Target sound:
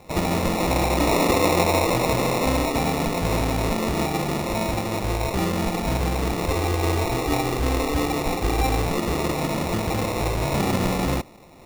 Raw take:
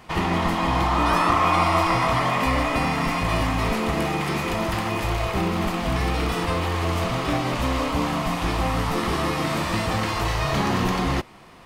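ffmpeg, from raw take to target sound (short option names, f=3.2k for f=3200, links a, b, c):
-filter_complex "[0:a]asettb=1/sr,asplit=3[a][b][c];[a]atrim=end=6.484[d];[b]atrim=start=6.48:end=8.86,asetpts=PTS-STARTPTS,afade=t=in:d=0.004:c=qsin,afade=t=out:st=2.376:d=0.004:c=qsin,aecho=1:1:2.6:0.61,atrim=end_sample=104958[e];[c]atrim=start=8.856[f];[d][e]acrossfade=d=0.004:c1=hsin:c2=qsin[g];[g][f]acrossfade=d=0.004:c1=qsin:c2=hsin,acrusher=samples=28:mix=1:aa=0.000001"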